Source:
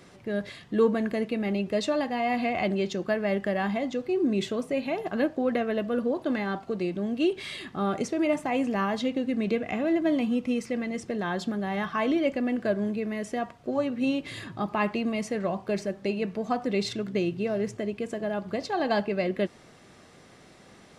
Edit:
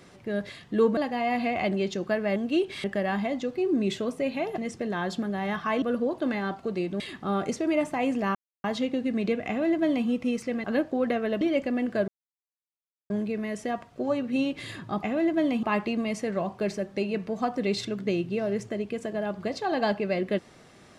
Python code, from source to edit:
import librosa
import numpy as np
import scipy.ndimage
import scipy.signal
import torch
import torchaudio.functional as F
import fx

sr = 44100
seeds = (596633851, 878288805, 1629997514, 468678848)

y = fx.edit(x, sr, fx.cut(start_s=0.97, length_s=0.99),
    fx.swap(start_s=5.09, length_s=0.77, other_s=10.87, other_length_s=1.24),
    fx.move(start_s=7.04, length_s=0.48, to_s=3.35),
    fx.insert_silence(at_s=8.87, length_s=0.29),
    fx.duplicate(start_s=9.71, length_s=0.6, to_s=14.71),
    fx.insert_silence(at_s=12.78, length_s=1.02), tone=tone)